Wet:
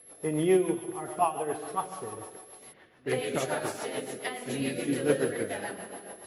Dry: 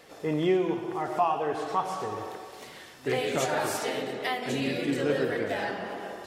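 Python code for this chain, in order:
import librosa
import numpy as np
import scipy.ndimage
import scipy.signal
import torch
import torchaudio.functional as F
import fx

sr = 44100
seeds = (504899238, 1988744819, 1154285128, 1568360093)

y = fx.high_shelf(x, sr, hz=4400.0, db=-5.5)
y = fx.echo_wet_highpass(y, sr, ms=346, feedback_pct=67, hz=4200.0, wet_db=-8.5)
y = y + 10.0 ** (-40.0 / 20.0) * np.sin(2.0 * np.pi * 11000.0 * np.arange(len(y)) / sr)
y = fx.rotary(y, sr, hz=7.0)
y = fx.env_lowpass(y, sr, base_hz=1800.0, full_db=-26.0, at=(2.72, 3.33), fade=0.02)
y = fx.upward_expand(y, sr, threshold_db=-42.0, expansion=1.5)
y = y * librosa.db_to_amplitude(3.5)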